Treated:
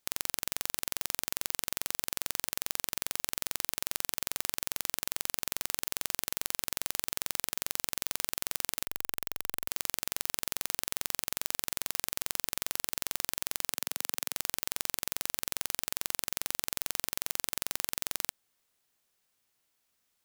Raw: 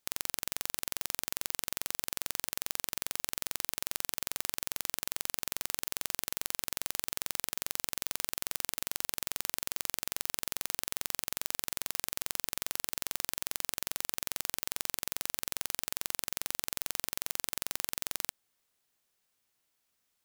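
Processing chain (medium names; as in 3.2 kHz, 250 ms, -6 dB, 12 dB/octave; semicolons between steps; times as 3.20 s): 8.85–9.68 s: fuzz box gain 41 dB, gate -47 dBFS; 13.72–14.34 s: high-pass 170 Hz 12 dB/octave; trim +1.5 dB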